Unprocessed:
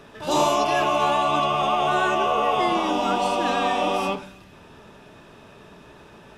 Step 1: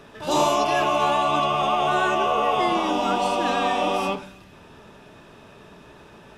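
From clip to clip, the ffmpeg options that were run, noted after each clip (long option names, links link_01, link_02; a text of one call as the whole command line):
ffmpeg -i in.wav -af anull out.wav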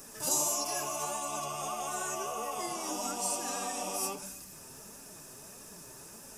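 ffmpeg -i in.wav -af "acompressor=threshold=-29dB:ratio=4,aexciter=amount=8.3:drive=9.6:freq=5400,flanger=delay=3.6:depth=4.3:regen=47:speed=1.6:shape=sinusoidal,volume=-3dB" out.wav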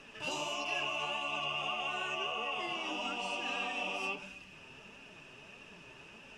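ffmpeg -i in.wav -af "lowpass=frequency=2800:width_type=q:width=8.6,volume=-3.5dB" out.wav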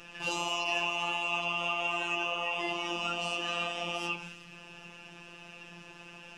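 ffmpeg -i in.wav -af "afftfilt=real='hypot(re,im)*cos(PI*b)':imag='0':win_size=1024:overlap=0.75,volume=7.5dB" out.wav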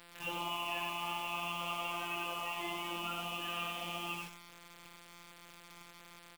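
ffmpeg -i in.wav -af "aecho=1:1:88:0.668,aresample=8000,aresample=44100,acrusher=bits=6:mix=0:aa=0.000001,volume=-6dB" out.wav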